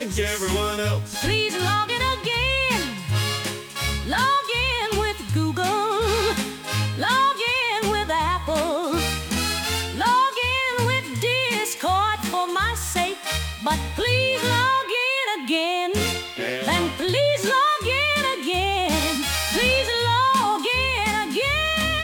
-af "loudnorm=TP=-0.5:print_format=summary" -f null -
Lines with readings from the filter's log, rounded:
Input Integrated:    -21.6 LUFS
Input True Peak:      -8.0 dBTP
Input LRA:             2.4 LU
Input Threshold:     -31.6 LUFS